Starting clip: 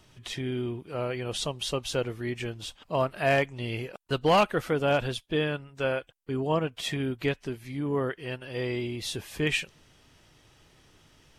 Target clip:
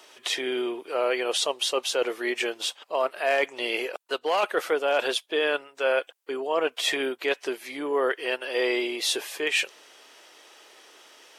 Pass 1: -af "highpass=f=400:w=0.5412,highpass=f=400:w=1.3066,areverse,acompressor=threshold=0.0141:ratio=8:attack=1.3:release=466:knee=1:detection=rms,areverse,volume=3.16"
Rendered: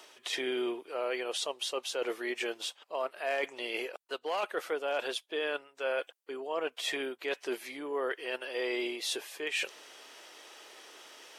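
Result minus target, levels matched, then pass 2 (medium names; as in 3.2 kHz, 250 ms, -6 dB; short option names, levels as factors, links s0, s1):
compression: peak gain reduction +9 dB
-af "highpass=f=400:w=0.5412,highpass=f=400:w=1.3066,areverse,acompressor=threshold=0.0447:ratio=8:attack=1.3:release=466:knee=1:detection=rms,areverse,volume=3.16"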